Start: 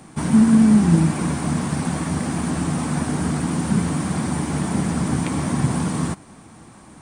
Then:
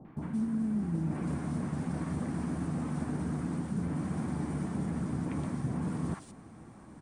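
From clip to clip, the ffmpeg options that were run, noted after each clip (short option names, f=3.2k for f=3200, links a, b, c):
-filter_complex "[0:a]highshelf=f=2.6k:g=-12,areverse,acompressor=threshold=-25dB:ratio=6,areverse,acrossover=split=880|3100[a][b][c];[b]adelay=50[d];[c]adelay=170[e];[a][d][e]amix=inputs=3:normalize=0,volume=-5dB"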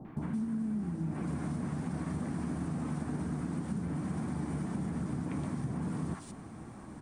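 -af "acompressor=threshold=-36dB:ratio=6,equalizer=f=520:t=o:w=0.21:g=-2,bandreject=f=83.4:t=h:w=4,bandreject=f=166.8:t=h:w=4,bandreject=f=250.2:t=h:w=4,bandreject=f=333.6:t=h:w=4,bandreject=f=417:t=h:w=4,bandreject=f=500.4:t=h:w=4,bandreject=f=583.8:t=h:w=4,bandreject=f=667.2:t=h:w=4,bandreject=f=750.6:t=h:w=4,bandreject=f=834:t=h:w=4,bandreject=f=917.4:t=h:w=4,bandreject=f=1.0008k:t=h:w=4,bandreject=f=1.0842k:t=h:w=4,bandreject=f=1.1676k:t=h:w=4,bandreject=f=1.251k:t=h:w=4,bandreject=f=1.3344k:t=h:w=4,bandreject=f=1.4178k:t=h:w=4,bandreject=f=1.5012k:t=h:w=4,bandreject=f=1.5846k:t=h:w=4,bandreject=f=1.668k:t=h:w=4,bandreject=f=1.7514k:t=h:w=4,bandreject=f=1.8348k:t=h:w=4,bandreject=f=1.9182k:t=h:w=4,bandreject=f=2.0016k:t=h:w=4,bandreject=f=2.085k:t=h:w=4,bandreject=f=2.1684k:t=h:w=4,bandreject=f=2.2518k:t=h:w=4,bandreject=f=2.3352k:t=h:w=4,bandreject=f=2.4186k:t=h:w=4,bandreject=f=2.502k:t=h:w=4,bandreject=f=2.5854k:t=h:w=4,bandreject=f=2.6688k:t=h:w=4,bandreject=f=2.7522k:t=h:w=4,bandreject=f=2.8356k:t=h:w=4,bandreject=f=2.919k:t=h:w=4,bandreject=f=3.0024k:t=h:w=4,bandreject=f=3.0858k:t=h:w=4,bandreject=f=3.1692k:t=h:w=4,bandreject=f=3.2526k:t=h:w=4,volume=4.5dB"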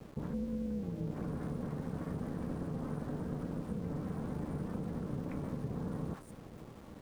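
-af "afftdn=nr=14:nf=-50,tremolo=f=280:d=0.75,aeval=exprs='val(0)*gte(abs(val(0)),0.00237)':c=same"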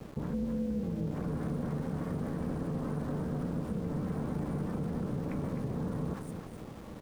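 -filter_complex "[0:a]aecho=1:1:257:0.376,asplit=2[a][b];[b]alimiter=level_in=10dB:limit=-24dB:level=0:latency=1,volume=-10dB,volume=-2dB[c];[a][c]amix=inputs=2:normalize=0"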